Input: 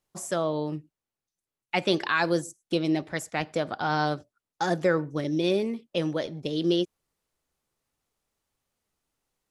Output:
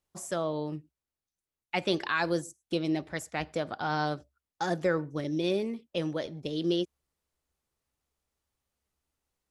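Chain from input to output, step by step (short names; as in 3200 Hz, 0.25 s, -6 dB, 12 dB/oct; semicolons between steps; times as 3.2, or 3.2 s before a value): bell 67 Hz +14 dB 0.33 oct; gain -4 dB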